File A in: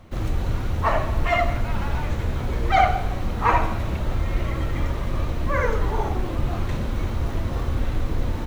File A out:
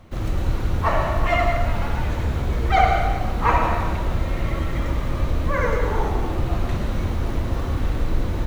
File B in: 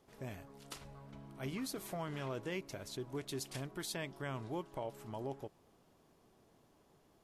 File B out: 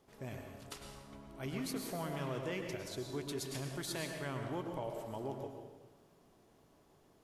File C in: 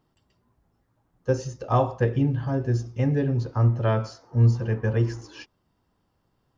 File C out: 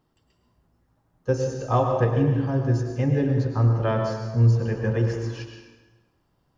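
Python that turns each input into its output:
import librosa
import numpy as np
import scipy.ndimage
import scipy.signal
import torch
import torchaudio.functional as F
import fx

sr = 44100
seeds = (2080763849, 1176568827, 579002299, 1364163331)

y = fx.rev_plate(x, sr, seeds[0], rt60_s=1.2, hf_ratio=0.8, predelay_ms=90, drr_db=3.5)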